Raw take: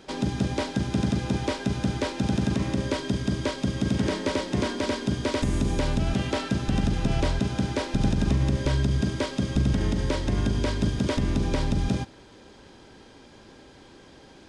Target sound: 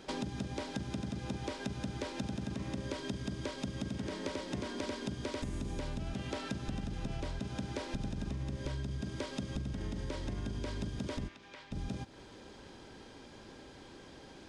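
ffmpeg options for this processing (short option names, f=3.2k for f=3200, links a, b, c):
-filter_complex "[0:a]acompressor=threshold=-32dB:ratio=10,asplit=3[a][b][c];[a]afade=t=out:st=11.27:d=0.02[d];[b]bandpass=f=2.1k:t=q:w=0.97:csg=0,afade=t=in:st=11.27:d=0.02,afade=t=out:st=11.71:d=0.02[e];[c]afade=t=in:st=11.71:d=0.02[f];[d][e][f]amix=inputs=3:normalize=0,volume=-2.5dB"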